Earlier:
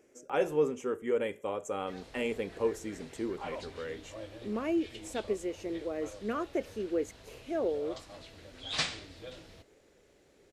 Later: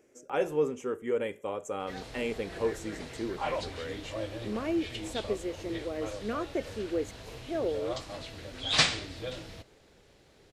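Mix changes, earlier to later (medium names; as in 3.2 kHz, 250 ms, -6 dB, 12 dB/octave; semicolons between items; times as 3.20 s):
background +8.0 dB; master: add peaking EQ 120 Hz +5 dB 0.25 oct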